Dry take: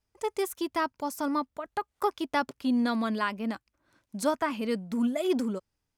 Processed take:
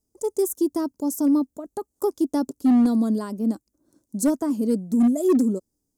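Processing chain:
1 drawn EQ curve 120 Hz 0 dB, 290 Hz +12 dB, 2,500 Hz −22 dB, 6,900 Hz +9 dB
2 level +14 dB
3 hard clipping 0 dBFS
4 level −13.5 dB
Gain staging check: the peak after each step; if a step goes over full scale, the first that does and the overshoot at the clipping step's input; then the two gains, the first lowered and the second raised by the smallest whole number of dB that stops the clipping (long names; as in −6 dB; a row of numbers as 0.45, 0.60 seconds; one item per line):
−9.5, +4.5, 0.0, −13.5 dBFS
step 2, 4.5 dB
step 2 +9 dB, step 4 −8.5 dB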